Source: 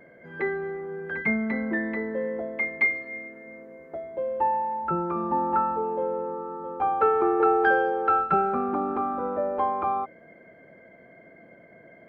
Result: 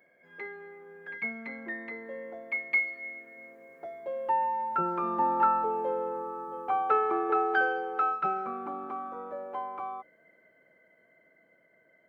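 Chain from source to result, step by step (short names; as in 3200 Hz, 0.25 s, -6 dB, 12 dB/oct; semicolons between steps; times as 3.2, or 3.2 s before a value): Doppler pass-by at 5.53, 10 m/s, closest 14 m; tilt +3 dB/oct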